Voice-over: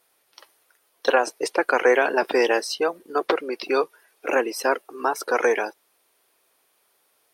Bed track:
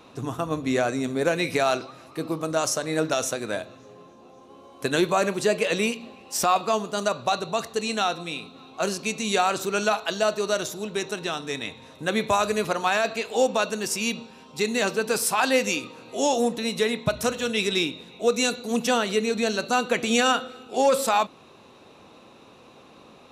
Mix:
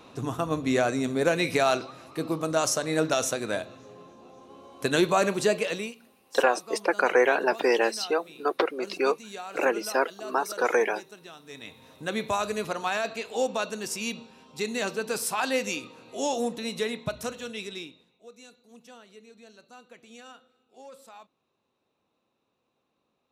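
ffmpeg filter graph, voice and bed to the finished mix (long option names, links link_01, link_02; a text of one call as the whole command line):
ffmpeg -i stem1.wav -i stem2.wav -filter_complex "[0:a]adelay=5300,volume=-3dB[link_01];[1:a]volume=11dB,afade=type=out:start_time=5.43:duration=0.52:silence=0.149624,afade=type=in:start_time=11.43:duration=0.49:silence=0.266073,afade=type=out:start_time=16.8:duration=1.4:silence=0.0841395[link_02];[link_01][link_02]amix=inputs=2:normalize=0" out.wav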